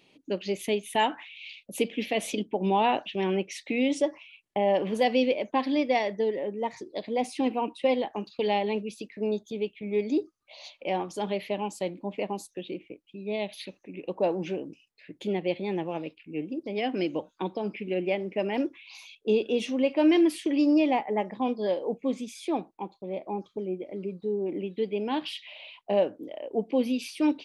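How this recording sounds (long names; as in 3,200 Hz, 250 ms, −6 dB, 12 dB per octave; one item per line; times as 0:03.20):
background noise floor −67 dBFS
spectral slope −4.0 dB per octave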